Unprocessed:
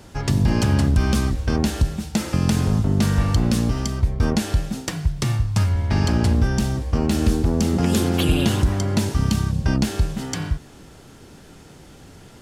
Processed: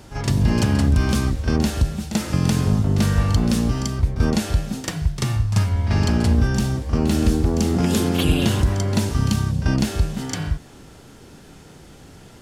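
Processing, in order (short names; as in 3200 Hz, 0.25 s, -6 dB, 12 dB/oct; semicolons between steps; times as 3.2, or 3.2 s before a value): reverse echo 39 ms -10 dB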